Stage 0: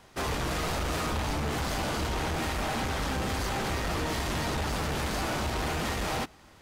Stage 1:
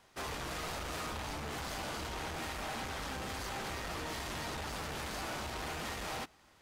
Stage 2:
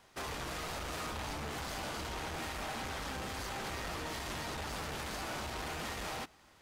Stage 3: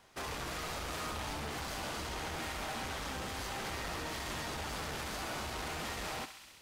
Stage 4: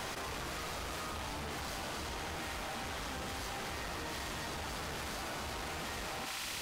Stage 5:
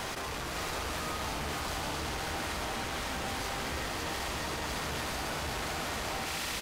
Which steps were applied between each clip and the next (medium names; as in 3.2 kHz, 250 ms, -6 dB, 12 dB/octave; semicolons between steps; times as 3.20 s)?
bass shelf 450 Hz -6 dB; trim -7 dB
peak limiter -34.5 dBFS, peak gain reduction 3 dB; trim +1.5 dB
thinning echo 66 ms, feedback 84%, high-pass 1.1 kHz, level -9.5 dB
level flattener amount 100%; trim -2.5 dB
delay 558 ms -3 dB; trim +3.5 dB